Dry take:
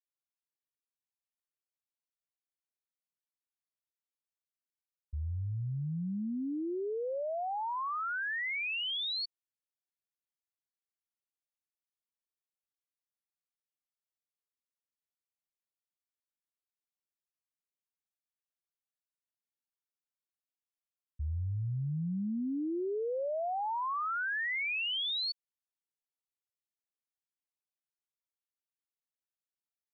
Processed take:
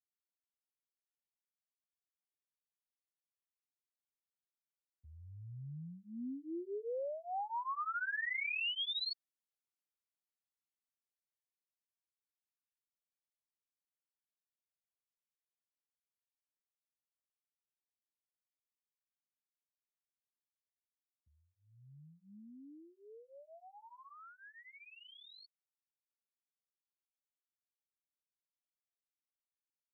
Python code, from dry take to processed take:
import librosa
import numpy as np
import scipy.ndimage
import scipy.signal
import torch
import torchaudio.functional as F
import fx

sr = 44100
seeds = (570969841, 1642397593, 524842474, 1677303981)

y = fx.doppler_pass(x, sr, speed_mps=6, closest_m=8.8, pass_at_s=8.44)
y = scipy.signal.sosfilt(scipy.signal.butter(2, 150.0, 'highpass', fs=sr, output='sos'), y)
y = fx.flanger_cancel(y, sr, hz=0.58, depth_ms=7.3)